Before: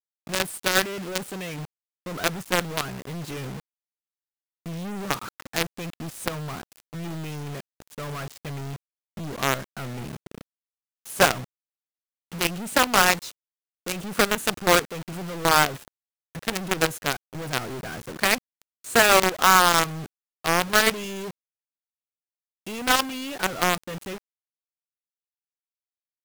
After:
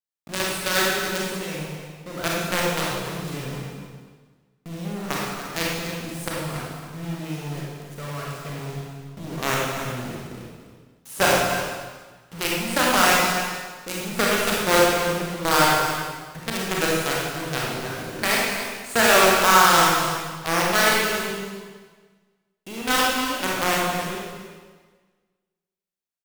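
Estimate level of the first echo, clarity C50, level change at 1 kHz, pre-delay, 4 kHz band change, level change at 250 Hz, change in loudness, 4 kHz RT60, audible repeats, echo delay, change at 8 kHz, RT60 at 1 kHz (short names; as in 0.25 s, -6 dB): -10.5 dB, -2.5 dB, +2.5 dB, 28 ms, +2.5 dB, +3.0 dB, +1.5 dB, 1.4 s, 1, 0.284 s, +2.0 dB, 1.4 s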